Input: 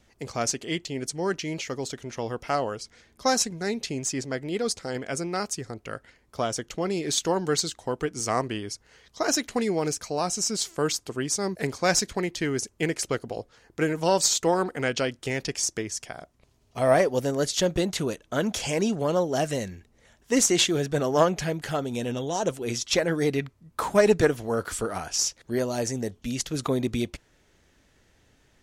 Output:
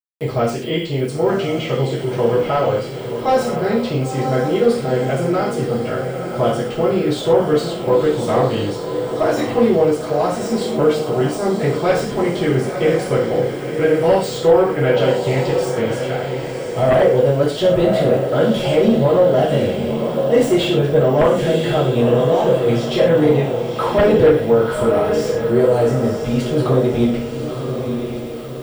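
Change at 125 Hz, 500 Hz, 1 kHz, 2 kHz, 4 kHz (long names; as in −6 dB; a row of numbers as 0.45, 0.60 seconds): +13.0, +12.5, +8.5, +5.0, +2.0 decibels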